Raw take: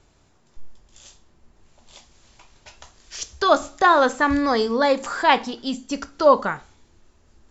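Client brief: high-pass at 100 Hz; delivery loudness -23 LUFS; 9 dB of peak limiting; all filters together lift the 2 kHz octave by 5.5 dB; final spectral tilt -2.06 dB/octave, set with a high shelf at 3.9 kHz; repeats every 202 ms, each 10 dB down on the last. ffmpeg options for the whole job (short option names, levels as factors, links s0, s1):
-af "highpass=100,equalizer=f=2000:t=o:g=5.5,highshelf=f=3900:g=8,alimiter=limit=0.447:level=0:latency=1,aecho=1:1:202|404|606|808:0.316|0.101|0.0324|0.0104,volume=0.708"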